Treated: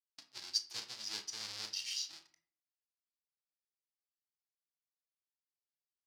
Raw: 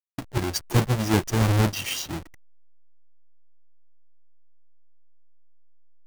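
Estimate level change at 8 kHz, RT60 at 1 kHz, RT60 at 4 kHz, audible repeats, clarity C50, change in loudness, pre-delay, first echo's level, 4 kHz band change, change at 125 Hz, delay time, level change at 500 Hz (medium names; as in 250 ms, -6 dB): -9.5 dB, 0.50 s, 0.30 s, no echo, 12.0 dB, -15.0 dB, 19 ms, no echo, -5.5 dB, under -40 dB, no echo, -33.0 dB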